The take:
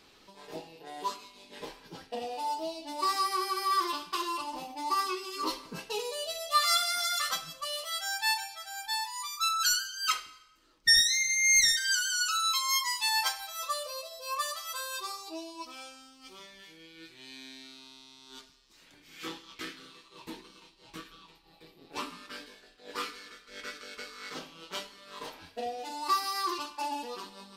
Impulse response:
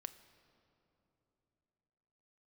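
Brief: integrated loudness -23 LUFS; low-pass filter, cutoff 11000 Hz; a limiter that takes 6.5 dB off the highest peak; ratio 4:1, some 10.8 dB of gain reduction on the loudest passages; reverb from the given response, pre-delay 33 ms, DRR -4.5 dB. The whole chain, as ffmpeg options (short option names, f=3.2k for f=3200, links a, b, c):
-filter_complex "[0:a]lowpass=11k,acompressor=threshold=-32dB:ratio=4,alimiter=level_in=3.5dB:limit=-24dB:level=0:latency=1,volume=-3.5dB,asplit=2[a][b];[1:a]atrim=start_sample=2205,adelay=33[c];[b][c]afir=irnorm=-1:irlink=0,volume=9dB[d];[a][d]amix=inputs=2:normalize=0,volume=8.5dB"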